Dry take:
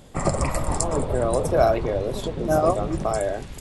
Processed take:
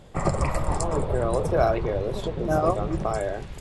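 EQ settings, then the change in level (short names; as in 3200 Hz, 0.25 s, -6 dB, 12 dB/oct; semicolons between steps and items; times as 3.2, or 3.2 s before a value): bell 260 Hz -7.5 dB 0.31 oct; high shelf 5600 Hz -11 dB; dynamic EQ 630 Hz, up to -4 dB, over -30 dBFS, Q 2.7; 0.0 dB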